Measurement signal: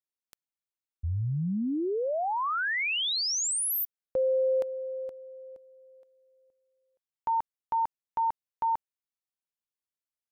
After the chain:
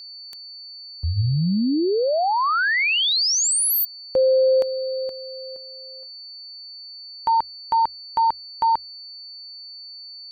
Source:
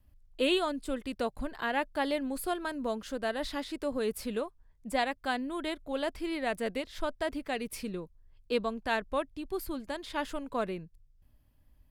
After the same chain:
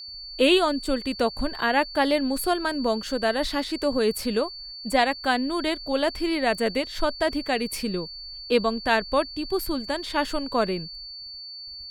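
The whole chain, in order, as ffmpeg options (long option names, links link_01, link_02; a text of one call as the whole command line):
ffmpeg -i in.wav -af "agate=range=-33dB:threshold=-56dB:ratio=3:release=123:detection=rms,acontrast=64,aeval=exprs='val(0)+0.0112*sin(2*PI*4500*n/s)':channel_layout=same,bandreject=frequency=45.9:width_type=h:width=4,bandreject=frequency=91.8:width_type=h:width=4,aeval=exprs='0.316*(cos(1*acos(clip(val(0)/0.316,-1,1)))-cos(1*PI/2))+0.00224*(cos(3*acos(clip(val(0)/0.316,-1,1)))-cos(3*PI/2))':channel_layout=same,volume=2.5dB" out.wav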